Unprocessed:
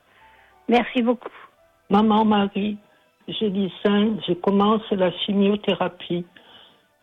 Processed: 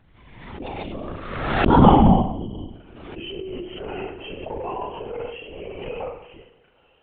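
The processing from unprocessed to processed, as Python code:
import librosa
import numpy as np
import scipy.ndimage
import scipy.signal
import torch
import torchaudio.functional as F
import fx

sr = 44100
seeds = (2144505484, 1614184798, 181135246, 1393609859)

p1 = fx.doppler_pass(x, sr, speed_mps=44, closest_m=5.1, pass_at_s=1.85)
p2 = fx.dmg_noise_colour(p1, sr, seeds[0], colour='brown', level_db=-68.0)
p3 = fx.filter_sweep_highpass(p2, sr, from_hz=80.0, to_hz=480.0, start_s=0.37, end_s=3.97, q=2.1)
p4 = fx.spec_erase(p3, sr, start_s=2.07, length_s=0.63, low_hz=1100.0, high_hz=2900.0)
p5 = p4 + fx.room_flutter(p4, sr, wall_m=8.0, rt60_s=0.8, dry=0)
p6 = fx.lpc_vocoder(p5, sr, seeds[1], excitation='whisper', order=16)
p7 = fx.over_compress(p6, sr, threshold_db=-44.0, ratio=-1.0)
p8 = p6 + (p7 * 10.0 ** (0.0 / 20.0))
p9 = fx.dynamic_eq(p8, sr, hz=750.0, q=0.78, threshold_db=-33.0, ratio=4.0, max_db=6)
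p10 = fx.pre_swell(p9, sr, db_per_s=42.0)
y = p10 * 10.0 ** (-2.0 / 20.0)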